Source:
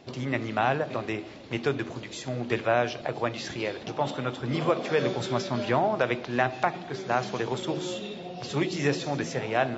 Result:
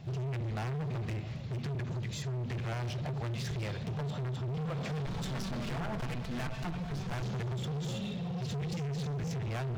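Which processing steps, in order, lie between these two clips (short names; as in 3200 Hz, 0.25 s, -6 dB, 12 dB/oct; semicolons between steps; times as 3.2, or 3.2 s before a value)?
5.06–7.22 minimum comb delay 4.5 ms; resonant low shelf 210 Hz +13 dB, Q 3; limiter -14.5 dBFS, peak gain reduction 11 dB; compressor, threshold -21 dBFS, peak gain reduction 4.5 dB; hard clip -30.5 dBFS, distortion -6 dB; crackle 190/s -58 dBFS; gain -3 dB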